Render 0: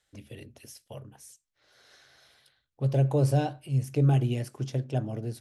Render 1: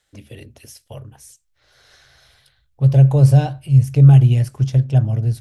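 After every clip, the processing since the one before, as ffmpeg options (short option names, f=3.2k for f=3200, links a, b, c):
-af "asubboost=boost=11:cutoff=95,volume=6.5dB"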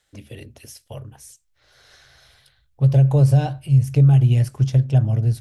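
-af "acompressor=threshold=-10dB:ratio=6"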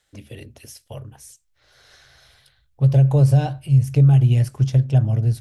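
-af anull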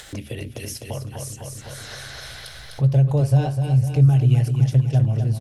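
-af "aecho=1:1:253|506|759|1012|1265|1518|1771:0.447|0.241|0.13|0.0703|0.038|0.0205|0.0111,acompressor=mode=upward:threshold=-19dB:ratio=2.5,volume=-2dB"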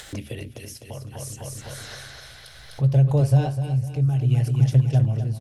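-af "tremolo=f=0.63:d=0.56"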